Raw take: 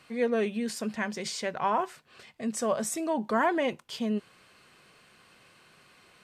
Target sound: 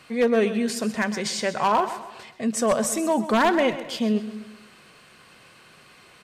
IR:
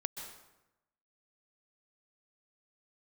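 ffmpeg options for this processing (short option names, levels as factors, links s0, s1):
-filter_complex "[0:a]aeval=exprs='0.106*(abs(mod(val(0)/0.106+3,4)-2)-1)':c=same,aecho=1:1:129|258|387|516:0.211|0.0888|0.0373|0.0157,asplit=2[s0][s1];[1:a]atrim=start_sample=2205[s2];[s1][s2]afir=irnorm=-1:irlink=0,volume=0.251[s3];[s0][s3]amix=inputs=2:normalize=0,volume=1.78"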